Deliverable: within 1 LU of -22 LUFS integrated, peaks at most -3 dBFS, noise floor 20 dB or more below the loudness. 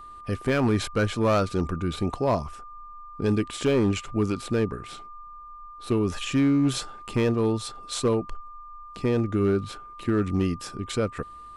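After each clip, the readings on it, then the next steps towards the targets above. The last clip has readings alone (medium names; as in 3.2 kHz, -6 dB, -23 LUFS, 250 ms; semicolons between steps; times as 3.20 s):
clipped samples 0.9%; clipping level -16.0 dBFS; steady tone 1.2 kHz; tone level -41 dBFS; loudness -26.0 LUFS; peak level -16.0 dBFS; loudness target -22.0 LUFS
-> clip repair -16 dBFS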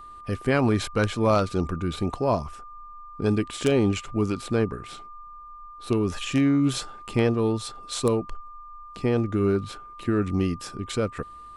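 clipped samples 0.0%; steady tone 1.2 kHz; tone level -41 dBFS
-> band-stop 1.2 kHz, Q 30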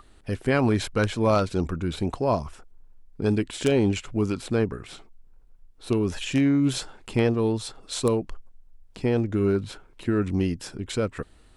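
steady tone not found; loudness -25.5 LUFS; peak level -7.0 dBFS; loudness target -22.0 LUFS
-> trim +3.5 dB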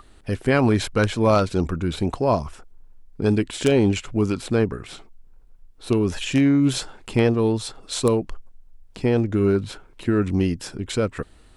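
loudness -22.0 LUFS; peak level -3.5 dBFS; noise floor -50 dBFS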